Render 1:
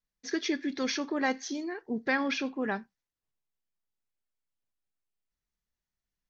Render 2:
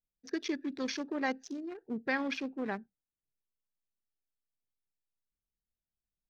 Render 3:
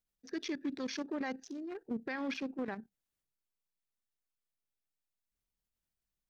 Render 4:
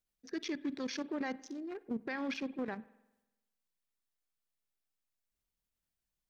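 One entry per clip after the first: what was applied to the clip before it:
local Wiener filter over 41 samples; trim -3.5 dB
level held to a coarse grid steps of 12 dB; peak limiter -36 dBFS, peak gain reduction 11 dB; trim +6.5 dB
reverberation RT60 1.0 s, pre-delay 47 ms, DRR 19 dB

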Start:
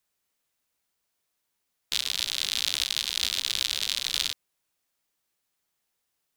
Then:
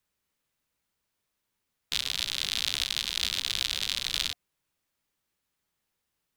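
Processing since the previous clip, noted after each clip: tone controls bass +6 dB, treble -4 dB; band-stop 710 Hz, Q 13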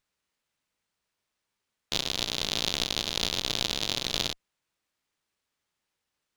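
bass shelf 320 Hz -5 dB; sliding maximum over 3 samples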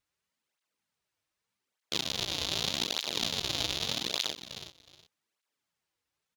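feedback delay 367 ms, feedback 19%, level -11.5 dB; cancelling through-zero flanger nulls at 0.83 Hz, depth 5.4 ms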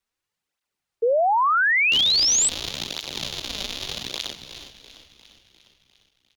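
frequency-shifting echo 351 ms, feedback 60%, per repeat -47 Hz, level -14.5 dB; painted sound rise, 1.02–2.49 s, 520–8300 Hz -20 dBFS; frequency shift -76 Hz; trim +1 dB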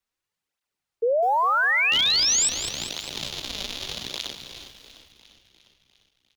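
bit-crushed delay 202 ms, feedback 55%, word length 7-bit, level -11.5 dB; trim -2 dB

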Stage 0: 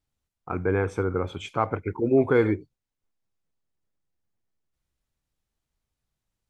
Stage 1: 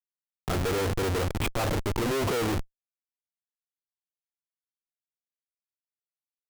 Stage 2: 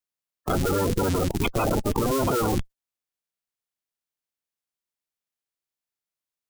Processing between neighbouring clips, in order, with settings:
dynamic bell 570 Hz, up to +6 dB, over -35 dBFS, Q 1.5; Schmitt trigger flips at -34.5 dBFS
coarse spectral quantiser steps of 30 dB; trim +4.5 dB

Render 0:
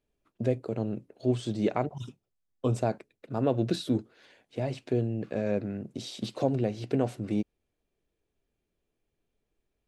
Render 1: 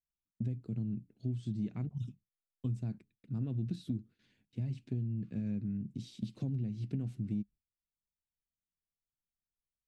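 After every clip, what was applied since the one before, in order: gate with hold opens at -49 dBFS; FFT filter 200 Hz 0 dB, 580 Hz -29 dB, 2.5 kHz -16 dB; compression, threshold -34 dBFS, peak gain reduction 9.5 dB; trim +2 dB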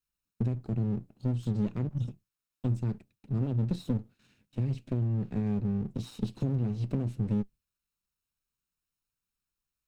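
comb filter that takes the minimum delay 0.74 ms; trim +7 dB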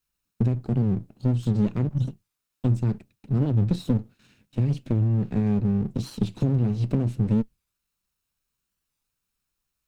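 warped record 45 rpm, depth 160 cents; trim +7 dB

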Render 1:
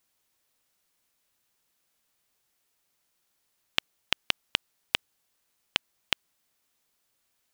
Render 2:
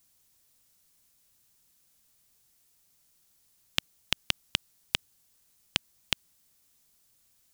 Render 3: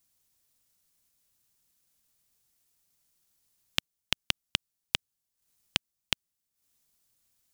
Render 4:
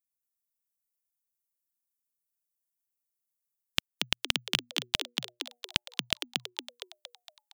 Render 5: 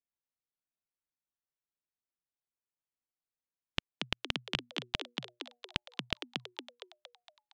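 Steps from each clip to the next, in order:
tone controls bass +11 dB, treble +9 dB; peak limiter -1.5 dBFS, peak gain reduction 4 dB
transient shaper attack +6 dB, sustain -11 dB; trim -6 dB
expander on every frequency bin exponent 1.5; frequency-shifting echo 231 ms, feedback 56%, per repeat +120 Hz, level -3.5 dB; trim +1 dB
tape spacing loss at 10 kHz 22 dB

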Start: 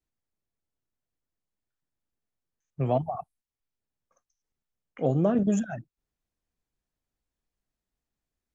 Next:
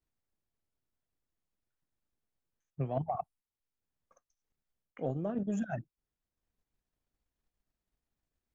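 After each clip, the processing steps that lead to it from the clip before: treble shelf 3.9 kHz -6 dB; reverse; compression 12:1, threshold -32 dBFS, peak gain reduction 13.5 dB; reverse; transient shaper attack +5 dB, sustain -4 dB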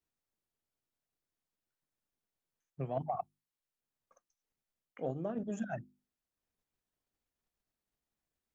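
bass shelf 100 Hz -9.5 dB; hum notches 50/100/150/200/250/300/350 Hz; trim -1 dB

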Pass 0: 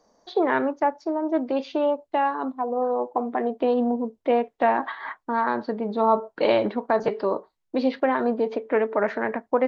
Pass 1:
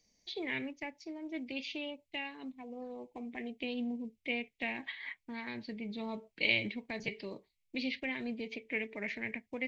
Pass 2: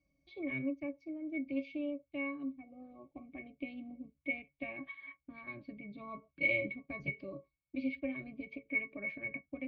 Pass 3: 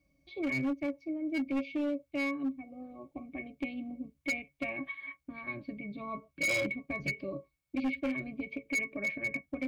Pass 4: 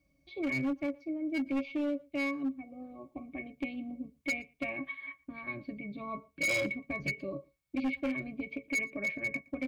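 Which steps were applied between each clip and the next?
FFT filter 110 Hz 0 dB, 550 Hz -20 dB, 1.4 kHz -27 dB, 2.2 kHz +8 dB, 3.7 kHz +1 dB; trim -2.5 dB
pitch-class resonator C#, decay 0.11 s; trim +9.5 dB
hard clipper -34 dBFS, distortion -10 dB; trim +6.5 dB
echo from a far wall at 20 m, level -26 dB

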